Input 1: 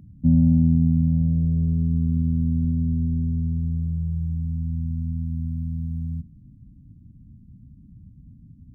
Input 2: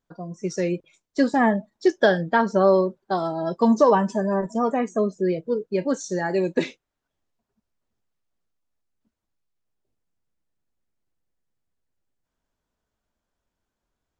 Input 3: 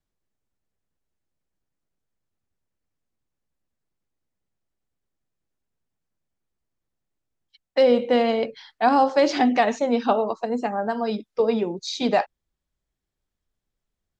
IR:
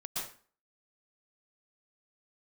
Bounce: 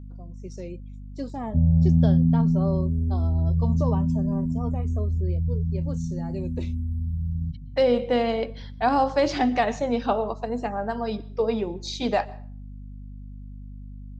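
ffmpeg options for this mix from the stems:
-filter_complex "[0:a]asplit=2[link_01][link_02];[link_02]afreqshift=0.54[link_03];[link_01][link_03]amix=inputs=2:normalize=1,adelay=1300,volume=2dB[link_04];[1:a]equalizer=frequency=1700:width=3.1:gain=-14,volume=-13dB[link_05];[2:a]aeval=exprs='val(0)+0.0178*(sin(2*PI*50*n/s)+sin(2*PI*2*50*n/s)/2+sin(2*PI*3*50*n/s)/3+sin(2*PI*4*50*n/s)/4+sin(2*PI*5*50*n/s)/5)':channel_layout=same,volume=-3.5dB,asplit=2[link_06][link_07];[link_07]volume=-22dB[link_08];[3:a]atrim=start_sample=2205[link_09];[link_08][link_09]afir=irnorm=-1:irlink=0[link_10];[link_04][link_05][link_06][link_10]amix=inputs=4:normalize=0"

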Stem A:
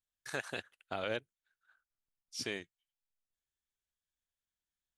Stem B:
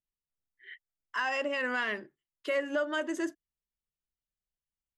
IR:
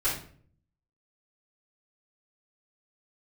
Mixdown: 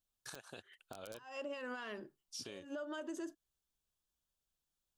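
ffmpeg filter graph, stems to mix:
-filter_complex "[0:a]aeval=exprs='(mod(13.3*val(0)+1,2)-1)/13.3':channel_layout=same,acompressor=threshold=-48dB:ratio=2,volume=2.5dB,asplit=2[link_01][link_02];[1:a]acompressor=threshold=-34dB:ratio=6,alimiter=level_in=7.5dB:limit=-24dB:level=0:latency=1:release=243,volume=-7.5dB,volume=1.5dB[link_03];[link_02]apad=whole_len=219603[link_04];[link_03][link_04]sidechaincompress=threshold=-52dB:ratio=10:attack=11:release=235[link_05];[link_01][link_05]amix=inputs=2:normalize=0,equalizer=frequency=2000:width=2.9:gain=-12,alimiter=level_in=11dB:limit=-24dB:level=0:latency=1:release=258,volume=-11dB"

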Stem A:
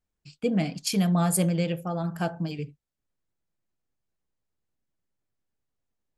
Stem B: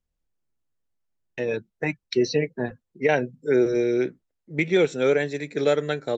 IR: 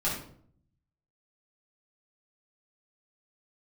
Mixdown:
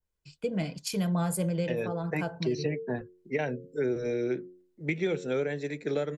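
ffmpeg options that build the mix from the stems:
-filter_complex "[0:a]aecho=1:1:2:0.45,volume=-3dB[link_01];[1:a]bandreject=frequency=90.33:width_type=h:width=4,bandreject=frequency=180.66:width_type=h:width=4,bandreject=frequency=270.99:width_type=h:width=4,bandreject=frequency=361.32:width_type=h:width=4,bandreject=frequency=451.65:width_type=h:width=4,bandreject=frequency=541.98:width_type=h:width=4,adelay=300,volume=-3dB[link_02];[link_01][link_02]amix=inputs=2:normalize=0,acrossover=split=190[link_03][link_04];[link_04]acompressor=threshold=-27dB:ratio=6[link_05];[link_03][link_05]amix=inputs=2:normalize=0,adynamicequalizer=threshold=0.00282:dfrequency=2000:dqfactor=0.7:tfrequency=2000:tqfactor=0.7:attack=5:release=100:ratio=0.375:range=2:mode=cutabove:tftype=highshelf"

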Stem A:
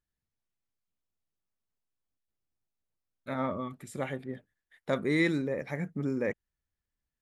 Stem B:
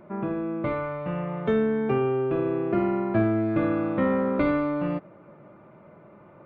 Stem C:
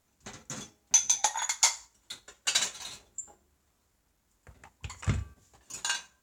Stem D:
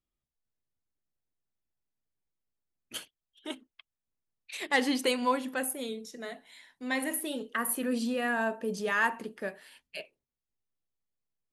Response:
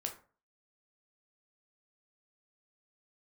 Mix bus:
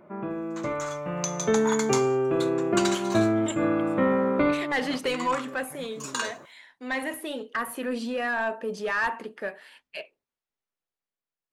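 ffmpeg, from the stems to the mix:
-filter_complex "[0:a]volume=-16.5dB[link_01];[1:a]lowshelf=frequency=150:gain=-8,volume=-2dB[link_02];[2:a]acompressor=threshold=-31dB:ratio=6,highpass=frequency=1100:width_type=q:width=4.9,adelay=300,volume=-2.5dB[link_03];[3:a]asplit=2[link_04][link_05];[link_05]highpass=frequency=720:poles=1,volume=17dB,asoftclip=type=tanh:threshold=-12.5dB[link_06];[link_04][link_06]amix=inputs=2:normalize=0,lowpass=frequency=1800:poles=1,volume=-6dB,volume=-7dB,asplit=2[link_07][link_08];[link_08]apad=whole_len=284656[link_09];[link_02][link_09]sidechaincompress=threshold=-43dB:ratio=8:attack=12:release=150[link_10];[link_01][link_10][link_03][link_07]amix=inputs=4:normalize=0,dynaudnorm=framelen=250:gausssize=9:maxgain=4dB"

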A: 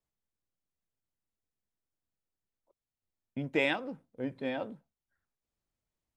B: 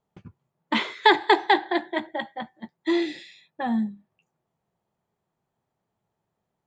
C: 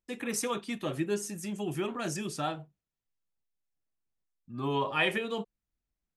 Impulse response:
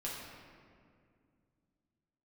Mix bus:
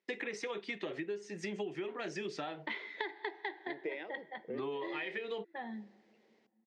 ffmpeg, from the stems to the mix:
-filter_complex "[0:a]equalizer=frequency=450:width=1.5:gain=9.5,acompressor=mode=upward:threshold=-36dB:ratio=2.5,adelay=300,volume=-18dB[link_01];[1:a]adelay=1950,volume=-13dB,asplit=2[link_02][link_03];[link_03]volume=-20.5dB[link_04];[2:a]volume=-0.5dB[link_05];[link_01][link_05]amix=inputs=2:normalize=0,acontrast=81,alimiter=limit=-20.5dB:level=0:latency=1:release=478,volume=0dB[link_06];[3:a]atrim=start_sample=2205[link_07];[link_04][link_07]afir=irnorm=-1:irlink=0[link_08];[link_02][link_06][link_08]amix=inputs=3:normalize=0,highpass=frequency=190:width=0.5412,highpass=frequency=190:width=1.3066,equalizer=frequency=240:width_type=q:width=4:gain=-9,equalizer=frequency=410:width_type=q:width=4:gain=7,equalizer=frequency=1200:width_type=q:width=4:gain=-5,equalizer=frequency=2000:width_type=q:width=4:gain=10,lowpass=frequency=5100:width=0.5412,lowpass=frequency=5100:width=1.3066,acompressor=threshold=-36dB:ratio=10"

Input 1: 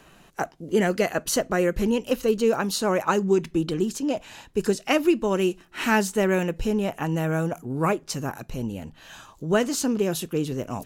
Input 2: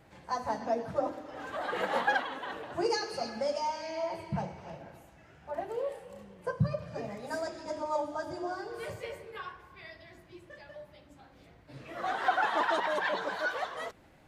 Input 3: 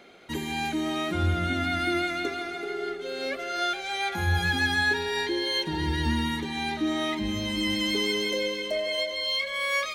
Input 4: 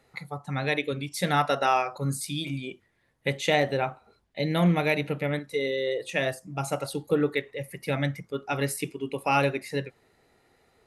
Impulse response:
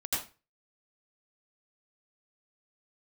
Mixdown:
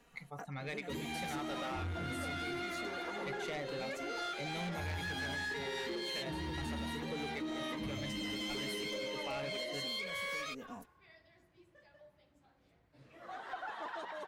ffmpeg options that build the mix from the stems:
-filter_complex "[0:a]aecho=1:1:4.2:0.99,acompressor=threshold=-27dB:ratio=6,volume=-17dB[link_01];[1:a]adelay=1250,volume=-13dB[link_02];[2:a]flanger=delay=3.5:depth=9.9:regen=-55:speed=2:shape=triangular,adelay=600,volume=-2dB[link_03];[3:a]equalizer=frequency=2200:width_type=o:width=0.21:gain=6,volume=-12dB[link_04];[link_01][link_02][link_03][link_04]amix=inputs=4:normalize=0,asoftclip=type=tanh:threshold=-30dB,acompressor=threshold=-37dB:ratio=6"

